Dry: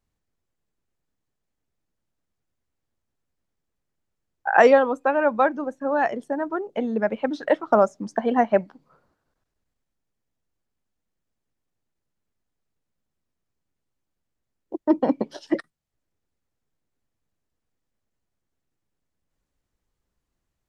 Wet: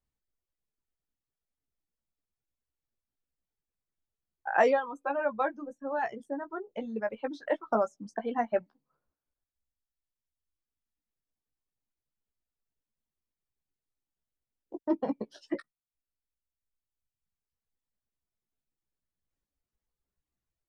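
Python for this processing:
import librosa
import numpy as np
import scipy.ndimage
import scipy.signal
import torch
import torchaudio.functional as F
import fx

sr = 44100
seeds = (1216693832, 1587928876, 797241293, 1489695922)

y = fx.dereverb_blind(x, sr, rt60_s=1.8)
y = fx.chorus_voices(y, sr, voices=6, hz=0.41, base_ms=16, depth_ms=2.4, mix_pct=30)
y = F.gain(torch.from_numpy(y), -6.5).numpy()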